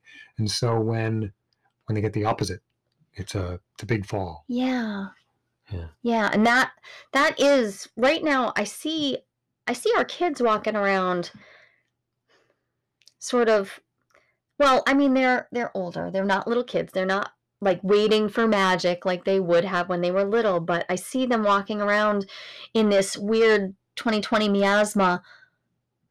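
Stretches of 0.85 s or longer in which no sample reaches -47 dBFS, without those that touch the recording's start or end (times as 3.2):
11.65–13.02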